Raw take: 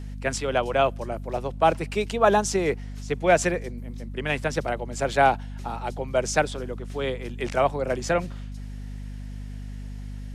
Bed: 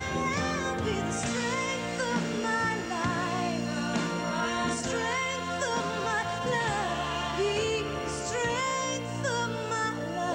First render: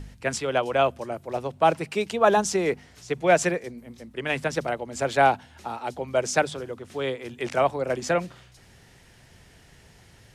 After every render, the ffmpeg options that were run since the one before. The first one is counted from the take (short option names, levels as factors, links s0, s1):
-af "bandreject=f=50:t=h:w=4,bandreject=f=100:t=h:w=4,bandreject=f=150:t=h:w=4,bandreject=f=200:t=h:w=4,bandreject=f=250:t=h:w=4"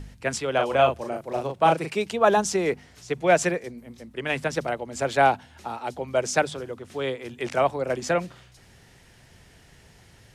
-filter_complex "[0:a]asettb=1/sr,asplit=3[s0][s1][s2];[s0]atrim=end=0.554[s3];[s1]atrim=start=0.55:end=1.92,asetpts=PTS-STARTPTS,afade=t=in:d=0.004:c=qsin,afade=t=out:st=1.366:d=0.004:c=qsin,asplit=2[s4][s5];[s5]adelay=38,volume=0.631[s6];[s4][s6]amix=inputs=2:normalize=0,atrim=end_sample=60417[s7];[s2]atrim=start=1.916[s8];[s3][s7]acrossfade=d=0.004:c1=hsin:c2=qsin[s9];[s9][s8]acrossfade=d=0.004:c1=qsin:c2=hsin"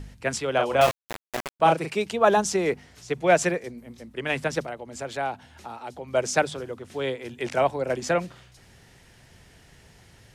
-filter_complex "[0:a]asettb=1/sr,asplit=3[s0][s1][s2];[s0]atrim=end=0.814[s3];[s1]atrim=start=0.81:end=1.6,asetpts=PTS-STARTPTS,afade=t=in:d=0.004:c=qsin,afade=t=out:st=0.786:d=0.004:c=qsin,aeval=exprs='val(0)*gte(abs(val(0)),0.0841)':c=same[s4];[s2]atrim=start=1.596[s5];[s3][s4]acrossfade=d=0.004:c1=hsin:c2=qsin[s6];[s6][s5]acrossfade=d=0.004:c1=qsin:c2=hsin,asettb=1/sr,asplit=3[s7][s8][s9];[s7]atrim=end=4.624[s10];[s8]atrim=start=4.62:end=6.13,asetpts=PTS-STARTPTS,afade=t=in:d=0.004:c=qsin,afade=t=out:st=1.506:d=0.004:c=qsin,acompressor=threshold=0.00794:ratio=1.5:attack=3.2:release=140:knee=1:detection=peak[s11];[s9]atrim=start=6.126[s12];[s10][s11]acrossfade=d=0.004:c1=hsin:c2=qsin[s13];[s13][s12]acrossfade=d=0.004:c1=qsin:c2=hsin,asettb=1/sr,asplit=3[s14][s15][s16];[s14]atrim=end=6.884[s17];[s15]atrim=start=6.88:end=8.01,asetpts=PTS-STARTPTS,afade=t=in:d=0.004:c=qsin,afade=t=out:st=1.126:d=0.004:c=qsin,bandreject=f=1200:w=10[s18];[s16]atrim=start=8.006[s19];[s17][s18]acrossfade=d=0.004:c1=hsin:c2=qsin[s20];[s20][s19]acrossfade=d=0.004:c1=qsin:c2=hsin"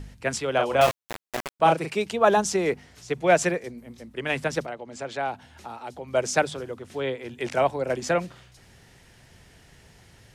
-filter_complex "[0:a]asettb=1/sr,asplit=3[s0][s1][s2];[s0]atrim=end=4.664[s3];[s1]atrim=start=4.66:end=5.28,asetpts=PTS-STARTPTS,afade=t=in:d=0.004:c=qsin,afade=t=out:st=0.616:d=0.004:c=qsin,highpass=120,lowpass=6800[s4];[s2]atrim=start=5.276[s5];[s3][s4]acrossfade=d=0.004:c1=hsin:c2=qsin[s6];[s6][s5]acrossfade=d=0.004:c1=qsin:c2=hsin,asettb=1/sr,asplit=3[s7][s8][s9];[s7]atrim=end=6.954[s10];[s8]atrim=start=6.95:end=7.35,asetpts=PTS-STARTPTS,afade=t=in:d=0.004:c=qsin,afade=t=out:st=0.396:d=0.004:c=qsin,acrossover=split=4100[s11][s12];[s12]acompressor=threshold=0.00126:ratio=4:attack=1:release=60[s13];[s11][s13]amix=inputs=2:normalize=0[s14];[s9]atrim=start=7.346[s15];[s10][s14]acrossfade=d=0.004:c1=hsin:c2=qsin[s16];[s16][s15]acrossfade=d=0.004:c1=qsin:c2=hsin"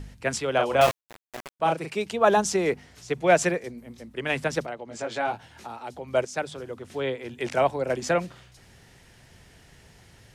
-filter_complex "[0:a]asettb=1/sr,asplit=3[s0][s1][s2];[s0]atrim=end=4.894[s3];[s1]atrim=start=4.89:end=5.67,asetpts=PTS-STARTPTS,afade=t=in:d=0.004:c=qsin,afade=t=out:st=0.776:d=0.004:c=qsin,asplit=2[s4][s5];[s5]adelay=18,volume=0.708[s6];[s4][s6]amix=inputs=2:normalize=0,atrim=end_sample=34398[s7];[s2]atrim=start=5.666[s8];[s3][s7]acrossfade=d=0.004:c1=hsin:c2=qsin[s9];[s9][s8]acrossfade=d=0.004:c1=qsin:c2=hsin,asplit=3[s10][s11][s12];[s10]atrim=end=1.01,asetpts=PTS-STARTPTS,afade=t=out:st=1.006:d=0.004:c=hsin:silence=0.177828[s13];[s11]atrim=start=1.01:end=6.25,asetpts=PTS-STARTPTS,afade=t=in:d=1.36:silence=0.177828,afade=t=out:st=5.236:d=0.004:c=hsin:silence=0.223872[s14];[s12]atrim=start=6.25,asetpts=PTS-STARTPTS,afade=t=in:d=0.58:silence=0.223872[s15];[s13][s14][s15]concat=n=3:v=0:a=1"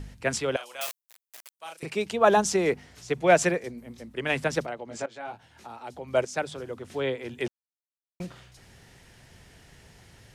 -filter_complex "[0:a]asettb=1/sr,asplit=3[s0][s1][s2];[s0]atrim=end=0.564[s3];[s1]atrim=start=0.56:end=1.83,asetpts=PTS-STARTPTS,afade=t=in:d=0.004:c=qsin,afade=t=out:st=1.266:d=0.004:c=qsin,aderivative[s4];[s2]atrim=start=1.826[s5];[s3][s4]acrossfade=d=0.004:c1=hsin:c2=qsin[s6];[s6][s5]acrossfade=d=0.004:c1=qsin:c2=hsin,asplit=4[s7][s8][s9][s10];[s7]atrim=end=5.06,asetpts=PTS-STARTPTS,afade=t=out:st=5.056:d=0.004:c=hsin:silence=0.158489[s11];[s8]atrim=start=5.06:end=7.48,asetpts=PTS-STARTPTS,afade=t=in:d=1.17:silence=0.158489,afade=t=out:st=2.416:d=0.004:c=hsin[s12];[s9]atrim=start=7.48:end=8.2,asetpts=PTS-STARTPTS,volume=0[s13];[s10]atrim=start=8.2,asetpts=PTS-STARTPTS,afade=t=in:d=0.004:c=hsin[s14];[s11][s12][s13][s14]concat=n=4:v=0:a=1"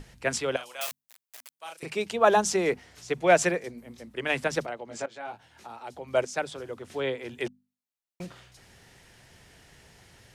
-af "lowshelf=f=280:g=-4,bandreject=f=50:t=h:w=6,bandreject=f=100:t=h:w=6,bandreject=f=150:t=h:w=6,bandreject=f=200:t=h:w=6,bandreject=f=250:t=h:w=6"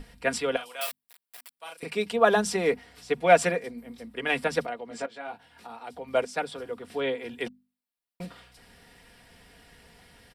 -af "equalizer=f=6500:w=5.4:g=-13.5,aecho=1:1:4.2:0.55"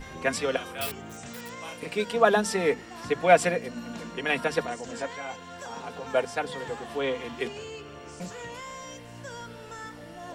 -filter_complex "[1:a]volume=0.282[s0];[0:a][s0]amix=inputs=2:normalize=0"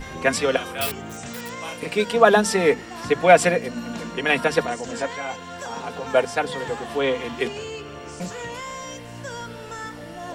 -af "volume=2.11,alimiter=limit=0.794:level=0:latency=1"